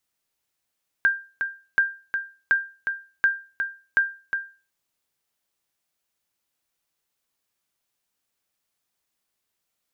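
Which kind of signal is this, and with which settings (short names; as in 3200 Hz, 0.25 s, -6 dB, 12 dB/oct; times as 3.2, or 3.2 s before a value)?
sonar ping 1590 Hz, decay 0.34 s, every 0.73 s, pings 5, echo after 0.36 s, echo -7 dB -11.5 dBFS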